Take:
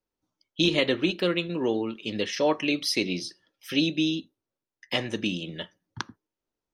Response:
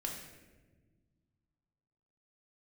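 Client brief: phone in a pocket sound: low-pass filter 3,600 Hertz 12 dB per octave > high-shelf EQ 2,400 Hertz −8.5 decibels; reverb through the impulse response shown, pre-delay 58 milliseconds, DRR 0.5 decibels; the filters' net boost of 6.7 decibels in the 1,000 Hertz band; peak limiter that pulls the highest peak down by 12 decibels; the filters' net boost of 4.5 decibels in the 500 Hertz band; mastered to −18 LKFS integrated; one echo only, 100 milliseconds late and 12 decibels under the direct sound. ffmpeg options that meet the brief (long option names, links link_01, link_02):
-filter_complex "[0:a]equalizer=frequency=500:width_type=o:gain=4,equalizer=frequency=1000:width_type=o:gain=8.5,alimiter=limit=-19dB:level=0:latency=1,aecho=1:1:100:0.251,asplit=2[link_01][link_02];[1:a]atrim=start_sample=2205,adelay=58[link_03];[link_02][link_03]afir=irnorm=-1:irlink=0,volume=-1dB[link_04];[link_01][link_04]amix=inputs=2:normalize=0,lowpass=3600,highshelf=frequency=2400:gain=-8.5,volume=10dB"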